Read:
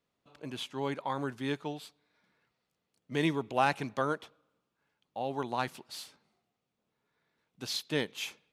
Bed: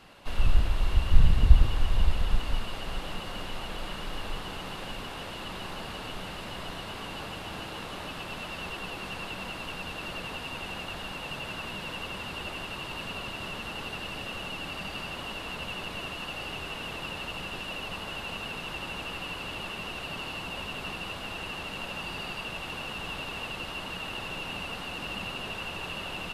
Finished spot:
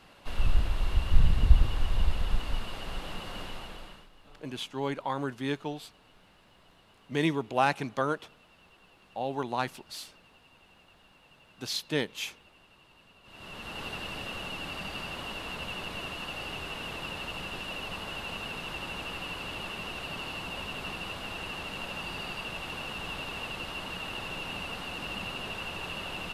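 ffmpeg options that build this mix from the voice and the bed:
-filter_complex "[0:a]adelay=4000,volume=1.26[s0];[1:a]volume=8.41,afade=t=out:st=3.42:d=0.67:silence=0.105925,afade=t=in:st=13.23:d=0.62:silence=0.0891251[s1];[s0][s1]amix=inputs=2:normalize=0"

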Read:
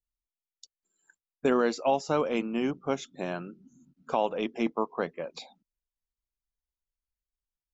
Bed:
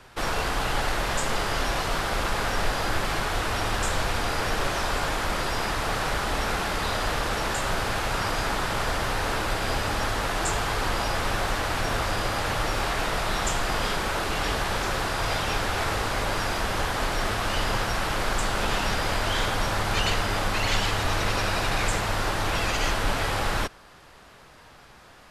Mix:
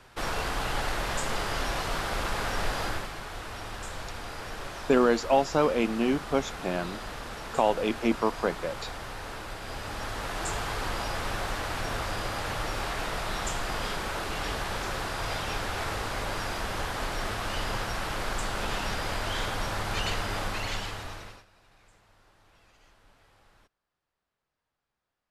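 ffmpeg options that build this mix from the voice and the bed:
-filter_complex "[0:a]adelay=3450,volume=1.41[s0];[1:a]volume=1.33,afade=t=out:st=2.84:d=0.27:silence=0.398107,afade=t=in:st=9.63:d=0.91:silence=0.473151,afade=t=out:st=20.42:d=1.03:silence=0.0316228[s1];[s0][s1]amix=inputs=2:normalize=0"

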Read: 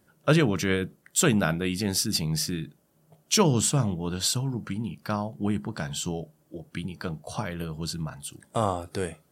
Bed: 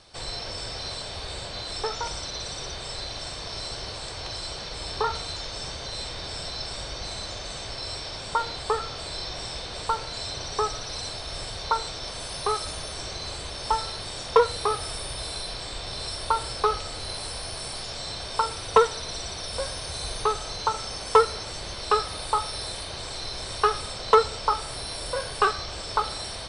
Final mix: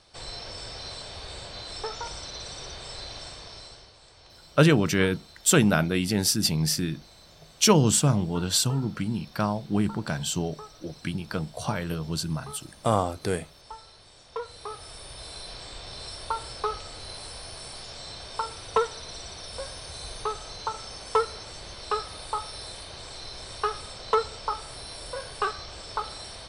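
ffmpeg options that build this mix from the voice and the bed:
-filter_complex "[0:a]adelay=4300,volume=1.33[s0];[1:a]volume=2.37,afade=t=out:st=3.16:d=0.75:silence=0.211349,afade=t=in:st=14.3:d=1.25:silence=0.251189[s1];[s0][s1]amix=inputs=2:normalize=0"

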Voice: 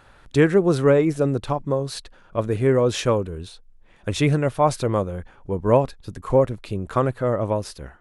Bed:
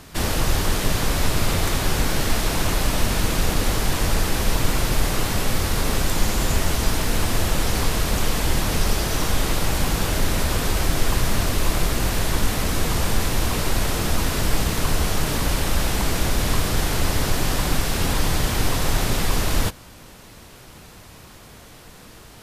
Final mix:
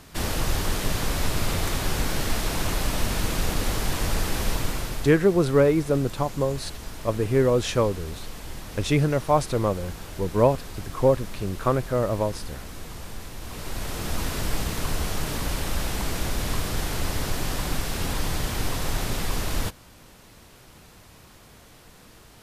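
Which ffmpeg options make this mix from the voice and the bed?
-filter_complex "[0:a]adelay=4700,volume=0.794[s0];[1:a]volume=2,afade=t=out:st=4.46:d=0.73:silence=0.251189,afade=t=in:st=13.4:d=0.83:silence=0.298538[s1];[s0][s1]amix=inputs=2:normalize=0"

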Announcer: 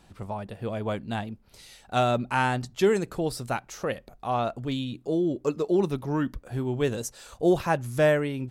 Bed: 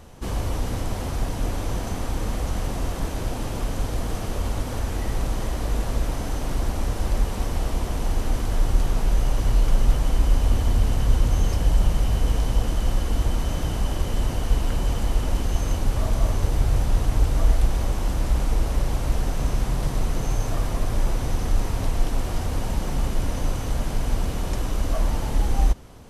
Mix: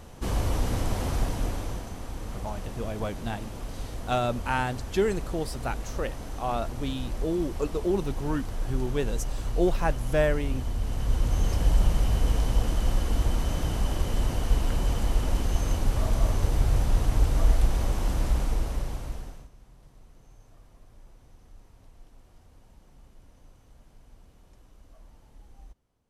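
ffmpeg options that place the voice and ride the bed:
-filter_complex "[0:a]adelay=2150,volume=0.708[s0];[1:a]volume=2.24,afade=t=out:st=1.14:d=0.75:silence=0.334965,afade=t=in:st=10.78:d=0.87:silence=0.421697,afade=t=out:st=18.22:d=1.27:silence=0.0421697[s1];[s0][s1]amix=inputs=2:normalize=0"

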